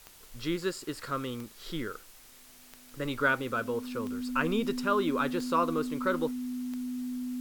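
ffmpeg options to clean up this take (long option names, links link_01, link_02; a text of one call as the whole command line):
ffmpeg -i in.wav -af "adeclick=threshold=4,bandreject=frequency=250:width=30,afftdn=noise_reduction=22:noise_floor=-54" out.wav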